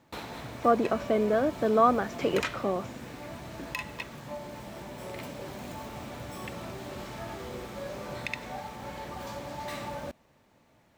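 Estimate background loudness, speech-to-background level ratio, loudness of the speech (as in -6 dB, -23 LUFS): -39.0 LUFS, 12.0 dB, -27.0 LUFS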